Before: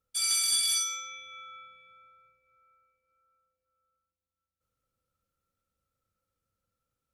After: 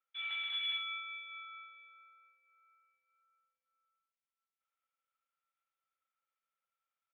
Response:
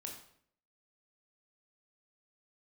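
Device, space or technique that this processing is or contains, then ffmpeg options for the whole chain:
musical greeting card: -af "aresample=8000,aresample=44100,highpass=f=750:w=0.5412,highpass=f=750:w=1.3066,equalizer=f=2200:t=o:w=0.39:g=5.5,volume=0.631"

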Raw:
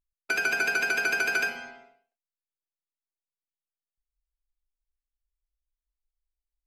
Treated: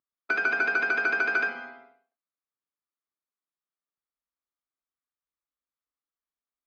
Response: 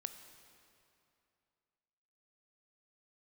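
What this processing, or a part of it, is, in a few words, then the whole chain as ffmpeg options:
kitchen radio: -af "highpass=190,equalizer=f=280:t=q:w=4:g=5,equalizer=f=1200:t=q:w=4:g=9,equalizer=f=2800:t=q:w=4:g=-10,lowpass=f=3700:w=0.5412,lowpass=f=3700:w=1.3066"

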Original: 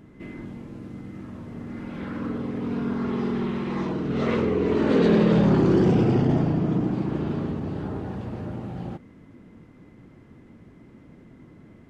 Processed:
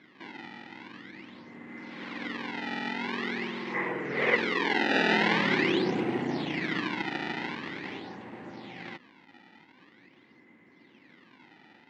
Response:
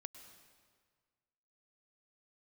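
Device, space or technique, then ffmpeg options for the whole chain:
circuit-bent sampling toy: -filter_complex "[0:a]acrusher=samples=23:mix=1:aa=0.000001:lfo=1:lforange=36.8:lforate=0.45,highpass=400,equalizer=f=440:t=q:w=4:g=-7,equalizer=f=630:t=q:w=4:g=-9,equalizer=f=1300:t=q:w=4:g=-6,equalizer=f=2000:t=q:w=4:g=8,lowpass=f=4000:w=0.5412,lowpass=f=4000:w=1.3066,asettb=1/sr,asplit=3[s0][s1][s2];[s0]atrim=end=3.744[s3];[s1]atrim=start=3.74:end=4.36,asetpts=PTS-STARTPTS,afade=t=in:d=0.004:c=qsin,afade=t=out:st=0.616:d=0.004:c=qsin,equalizer=f=125:t=o:w=1:g=7,equalizer=f=250:t=o:w=1:g=-7,equalizer=f=500:t=o:w=1:g=9,equalizer=f=2000:t=o:w=1:g=9,equalizer=f=4000:t=o:w=1:g=-7[s4];[s2]atrim=start=4.356[s5];[s3][s4]acrossfade=d=0.004:c1=hsin:c2=qsin[s6];[s6][s5]acrossfade=d=0.004:c1=qsin:c2=hsin"

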